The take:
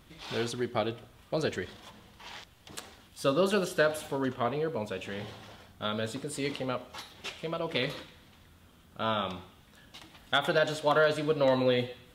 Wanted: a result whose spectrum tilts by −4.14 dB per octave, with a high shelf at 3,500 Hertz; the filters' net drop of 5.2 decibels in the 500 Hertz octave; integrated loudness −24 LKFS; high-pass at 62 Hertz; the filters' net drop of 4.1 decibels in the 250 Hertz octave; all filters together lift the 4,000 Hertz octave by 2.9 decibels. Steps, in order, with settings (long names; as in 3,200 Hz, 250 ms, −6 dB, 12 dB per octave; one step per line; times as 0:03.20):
high-pass filter 62 Hz
parametric band 250 Hz −3.5 dB
parametric band 500 Hz −5.5 dB
high-shelf EQ 3,500 Hz −4 dB
parametric band 4,000 Hz +6 dB
level +9 dB